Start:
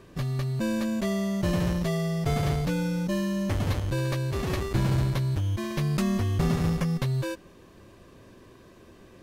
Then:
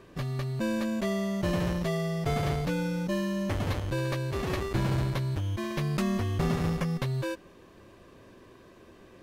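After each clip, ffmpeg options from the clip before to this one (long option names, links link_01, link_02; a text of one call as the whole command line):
ffmpeg -i in.wav -af "bass=frequency=250:gain=-4,treble=frequency=4000:gain=-4" out.wav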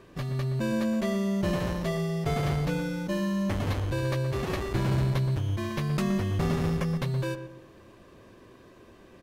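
ffmpeg -i in.wav -filter_complex "[0:a]asplit=2[link_01][link_02];[link_02]adelay=122,lowpass=frequency=1400:poles=1,volume=-8.5dB,asplit=2[link_03][link_04];[link_04]adelay=122,lowpass=frequency=1400:poles=1,volume=0.4,asplit=2[link_05][link_06];[link_06]adelay=122,lowpass=frequency=1400:poles=1,volume=0.4,asplit=2[link_07][link_08];[link_08]adelay=122,lowpass=frequency=1400:poles=1,volume=0.4[link_09];[link_01][link_03][link_05][link_07][link_09]amix=inputs=5:normalize=0" out.wav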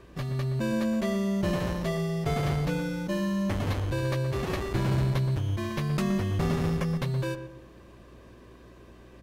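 ffmpeg -i in.wav -af "aeval=exprs='val(0)+0.00224*(sin(2*PI*60*n/s)+sin(2*PI*2*60*n/s)/2+sin(2*PI*3*60*n/s)/3+sin(2*PI*4*60*n/s)/4+sin(2*PI*5*60*n/s)/5)':channel_layout=same" out.wav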